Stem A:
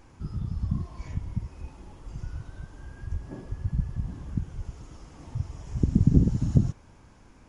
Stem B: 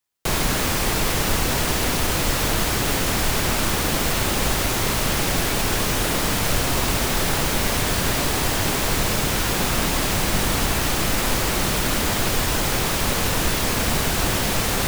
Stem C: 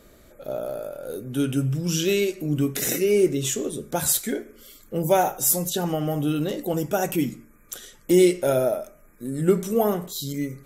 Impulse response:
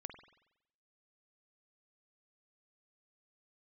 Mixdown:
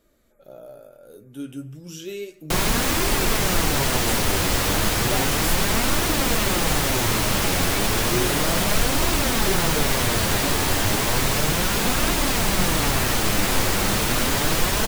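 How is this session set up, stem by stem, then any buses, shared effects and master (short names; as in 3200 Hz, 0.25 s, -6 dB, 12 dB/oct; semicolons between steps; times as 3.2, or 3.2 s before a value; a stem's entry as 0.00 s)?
off
+1.5 dB, 2.25 s, send -3 dB, dry
-9.5 dB, 0.00 s, send -8.5 dB, dry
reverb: on, RT60 0.85 s, pre-delay 46 ms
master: flange 0.33 Hz, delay 2.8 ms, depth 8.5 ms, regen +51%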